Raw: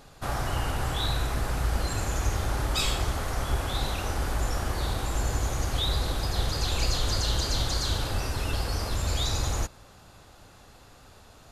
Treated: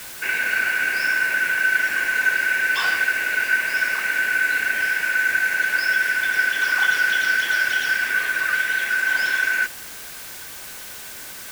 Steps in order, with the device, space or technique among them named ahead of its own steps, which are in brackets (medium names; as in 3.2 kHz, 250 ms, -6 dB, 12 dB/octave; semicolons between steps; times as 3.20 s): split-band scrambled radio (four frequency bands reordered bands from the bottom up 2143; band-pass 360–3200 Hz; white noise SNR 15 dB); trim +6.5 dB